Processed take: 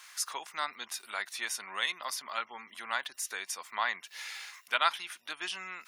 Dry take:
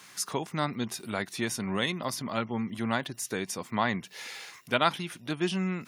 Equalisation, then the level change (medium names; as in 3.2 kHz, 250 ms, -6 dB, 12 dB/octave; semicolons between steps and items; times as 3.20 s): Chebyshev high-pass 1.2 kHz, order 2; 0.0 dB